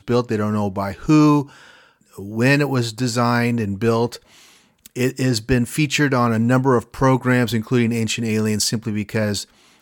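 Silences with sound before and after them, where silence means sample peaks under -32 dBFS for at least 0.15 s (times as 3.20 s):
1.45–2.18 s
4.16–4.85 s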